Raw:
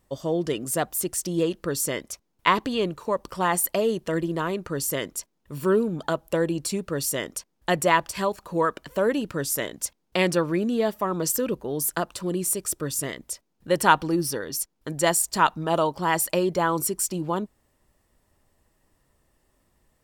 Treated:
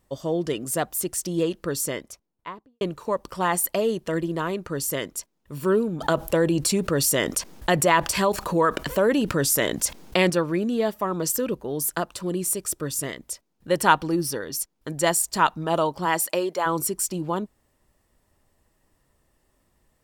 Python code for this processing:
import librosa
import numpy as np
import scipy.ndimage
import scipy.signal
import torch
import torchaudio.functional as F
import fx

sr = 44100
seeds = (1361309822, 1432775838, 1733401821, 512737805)

y = fx.studio_fade_out(x, sr, start_s=1.75, length_s=1.06)
y = fx.env_flatten(y, sr, amount_pct=50, at=(6.01, 10.3))
y = fx.highpass(y, sr, hz=fx.line((16.05, 140.0), (16.65, 550.0)), slope=12, at=(16.05, 16.65), fade=0.02)